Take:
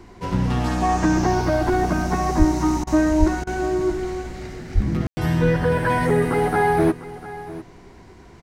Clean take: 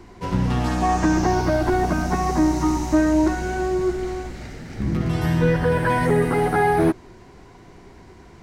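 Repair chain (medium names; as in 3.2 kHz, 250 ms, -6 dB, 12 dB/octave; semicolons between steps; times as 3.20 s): 2.38–2.50 s: high-pass 140 Hz 24 dB/octave; 3.19–3.31 s: high-pass 140 Hz 24 dB/octave; 4.74–4.86 s: high-pass 140 Hz 24 dB/octave; room tone fill 5.07–5.17 s; interpolate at 2.84/3.44 s, 29 ms; inverse comb 700 ms -16 dB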